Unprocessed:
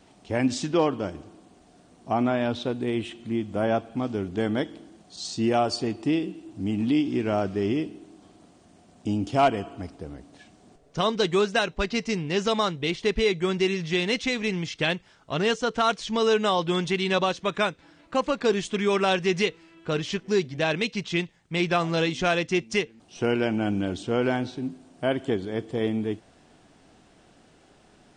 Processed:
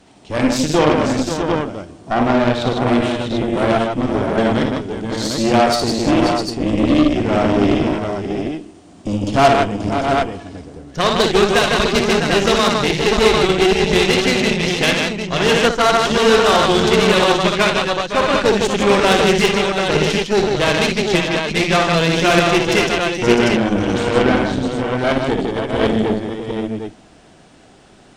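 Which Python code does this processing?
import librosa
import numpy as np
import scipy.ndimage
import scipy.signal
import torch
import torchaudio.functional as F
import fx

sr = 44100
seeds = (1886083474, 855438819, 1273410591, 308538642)

y = fx.echo_multitap(x, sr, ms=(59, 72, 156, 533, 653, 747), db=(-5.0, -13.0, -4.0, -8.5, -7.5, -4.5))
y = fx.cheby_harmonics(y, sr, harmonics=(8,), levels_db=(-17,), full_scale_db=-6.5)
y = y * 10.0 ** (6.0 / 20.0)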